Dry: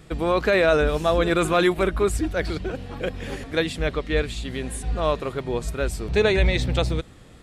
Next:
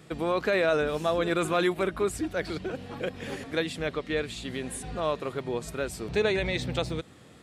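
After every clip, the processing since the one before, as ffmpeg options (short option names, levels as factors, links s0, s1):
-filter_complex "[0:a]highpass=120,asplit=2[s0][s1];[s1]acompressor=threshold=0.0355:ratio=6,volume=0.841[s2];[s0][s2]amix=inputs=2:normalize=0,volume=0.422"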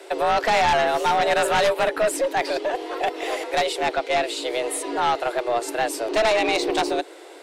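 -af "highpass=f=53:w=0.5412,highpass=f=53:w=1.3066,afreqshift=230,aeval=exprs='0.224*(cos(1*acos(clip(val(0)/0.224,-1,1)))-cos(1*PI/2))+0.1*(cos(2*acos(clip(val(0)/0.224,-1,1)))-cos(2*PI/2))+0.0891*(cos(5*acos(clip(val(0)/0.224,-1,1)))-cos(5*PI/2))':c=same"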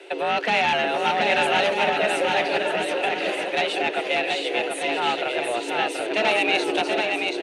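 -filter_complex "[0:a]highpass=150,equalizer=f=210:t=q:w=4:g=7,equalizer=f=640:t=q:w=4:g=-4,equalizer=f=1100:t=q:w=4:g=-7,equalizer=f=2700:t=q:w=4:g=9,equalizer=f=5100:t=q:w=4:g=-8,equalizer=f=7500:t=q:w=4:g=-10,lowpass=f=9100:w=0.5412,lowpass=f=9100:w=1.3066,asplit=2[s0][s1];[s1]aecho=0:1:730|1241|1599|1849|2024:0.631|0.398|0.251|0.158|0.1[s2];[s0][s2]amix=inputs=2:normalize=0,volume=0.841"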